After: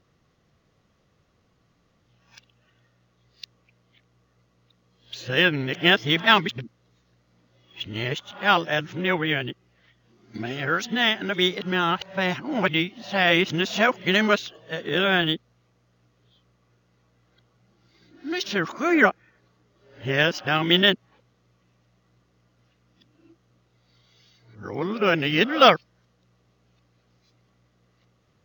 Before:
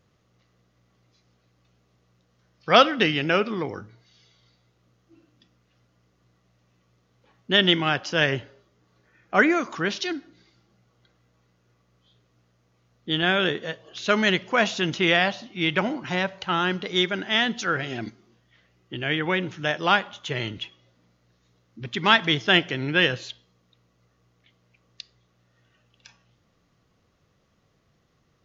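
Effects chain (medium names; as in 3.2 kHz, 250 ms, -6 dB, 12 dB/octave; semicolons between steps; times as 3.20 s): reverse the whole clip; decimation joined by straight lines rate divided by 2×; trim +1 dB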